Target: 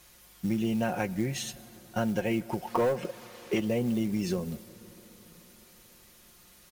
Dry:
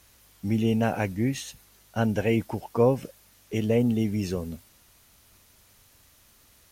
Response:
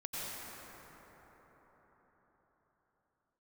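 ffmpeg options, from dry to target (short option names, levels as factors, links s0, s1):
-filter_complex "[0:a]lowshelf=f=74:g=-2.5,aecho=1:1:5.6:0.62,asettb=1/sr,asplit=3[s0][s1][s2];[s0]atrim=end=2.674[s3];[s1]atrim=start=2.67:end=3.6,asetpts=PTS-STARTPTS,afade=t=in:d=0.004:c=qsin,afade=t=out:st=0.926:d=0.004:c=qsin,asplit=2[s4][s5];[s5]highpass=f=720:p=1,volume=11.2,asoftclip=type=tanh:threshold=0.422[s6];[s4][s6]amix=inputs=2:normalize=0,lowpass=f=1500:p=1,volume=0.501[s7];[s2]atrim=start=3.596[s8];[s3][s7]acrossfade=d=0.004:c1=hsin:c2=qsin[s9];[s9][s8]acrossfade=d=0.004:c1=qsin:c2=hsin,acrusher=bits=6:mode=log:mix=0:aa=0.000001,acompressor=threshold=0.0501:ratio=4,asplit=2[s10][s11];[1:a]atrim=start_sample=2205[s12];[s11][s12]afir=irnorm=-1:irlink=0,volume=0.0841[s13];[s10][s13]amix=inputs=2:normalize=0"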